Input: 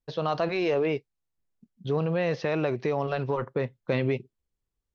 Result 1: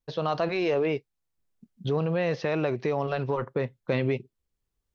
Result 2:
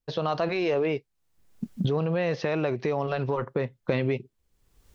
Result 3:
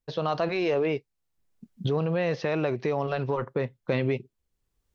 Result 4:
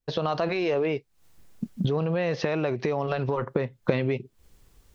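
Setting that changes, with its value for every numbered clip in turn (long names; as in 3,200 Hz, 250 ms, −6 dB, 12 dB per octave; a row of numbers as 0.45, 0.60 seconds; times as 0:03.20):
camcorder AGC, rising by: 5, 36, 13, 89 dB per second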